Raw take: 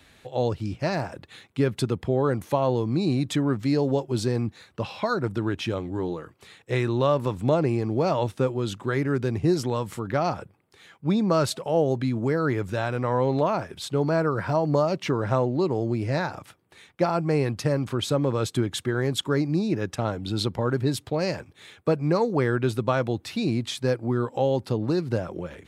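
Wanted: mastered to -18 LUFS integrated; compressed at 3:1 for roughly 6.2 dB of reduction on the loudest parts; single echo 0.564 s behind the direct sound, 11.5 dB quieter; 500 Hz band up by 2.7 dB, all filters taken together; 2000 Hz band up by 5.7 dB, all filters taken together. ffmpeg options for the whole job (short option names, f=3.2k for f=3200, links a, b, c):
-af "equalizer=f=500:t=o:g=3,equalizer=f=2k:t=o:g=7.5,acompressor=threshold=-23dB:ratio=3,aecho=1:1:564:0.266,volume=9.5dB"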